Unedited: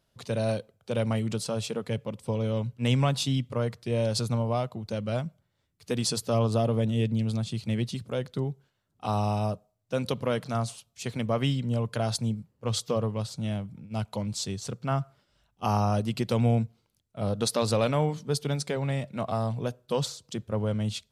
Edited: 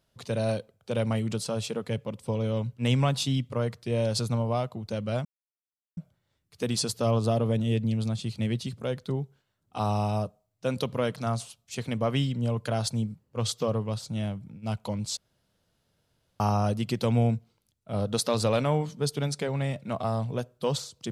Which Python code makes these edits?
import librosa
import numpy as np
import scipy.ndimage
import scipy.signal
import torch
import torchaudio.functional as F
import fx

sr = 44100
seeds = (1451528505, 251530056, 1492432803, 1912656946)

y = fx.edit(x, sr, fx.insert_silence(at_s=5.25, length_s=0.72),
    fx.room_tone_fill(start_s=14.45, length_s=1.23), tone=tone)